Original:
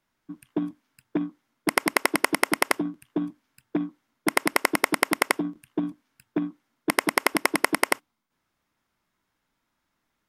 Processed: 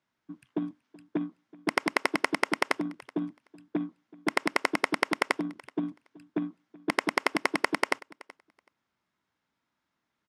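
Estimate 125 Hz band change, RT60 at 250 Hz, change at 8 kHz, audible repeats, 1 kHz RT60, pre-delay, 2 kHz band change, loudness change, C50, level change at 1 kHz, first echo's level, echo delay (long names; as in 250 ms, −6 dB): −4.0 dB, no reverb audible, −12.0 dB, 1, no reverb audible, no reverb audible, −4.0 dB, −4.5 dB, no reverb audible, −4.0 dB, −22.0 dB, 377 ms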